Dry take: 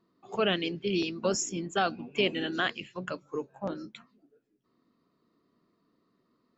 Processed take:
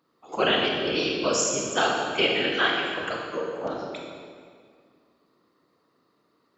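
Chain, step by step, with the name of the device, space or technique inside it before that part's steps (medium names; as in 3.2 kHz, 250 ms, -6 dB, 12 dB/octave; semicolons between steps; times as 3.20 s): whispering ghost (whisper effect; high-pass 500 Hz 6 dB/octave; reverberation RT60 2.0 s, pre-delay 26 ms, DRR -1 dB); trim +5 dB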